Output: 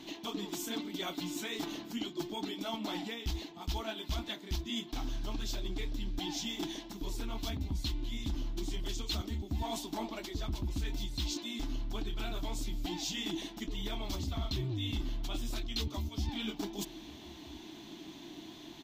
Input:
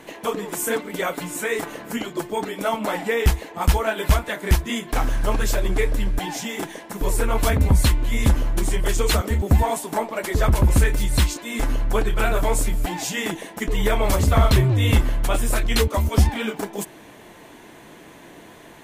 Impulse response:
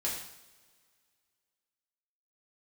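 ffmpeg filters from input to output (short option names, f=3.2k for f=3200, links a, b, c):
-filter_complex "[0:a]firequalizer=gain_entry='entry(180,0);entry(320,9);entry(480,-14);entry(690,-2);entry(1200,-5);entry(1700,-8);entry(3500,11);entry(5900,6);entry(9300,-12);entry(15000,1)':delay=0.05:min_phase=1,areverse,acompressor=threshold=-28dB:ratio=4,areverse,asplit=2[a][b];[b]adelay=1283,volume=-20dB,highshelf=f=4k:g=-28.9[c];[a][c]amix=inputs=2:normalize=0,volume=-7dB"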